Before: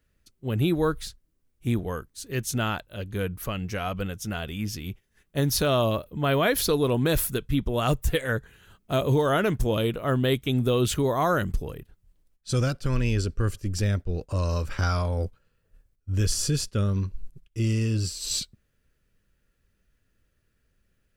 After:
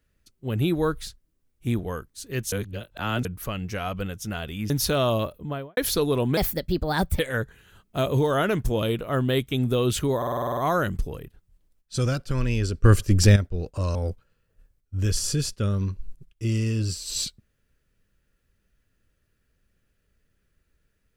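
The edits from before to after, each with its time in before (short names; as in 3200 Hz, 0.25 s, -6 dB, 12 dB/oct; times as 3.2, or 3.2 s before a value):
2.52–3.25 reverse
4.7–5.42 cut
6.04–6.49 studio fade out
7.09–8.14 speed 128%
11.12 stutter 0.05 s, 9 plays
13.39–13.91 gain +10 dB
14.5–15.1 cut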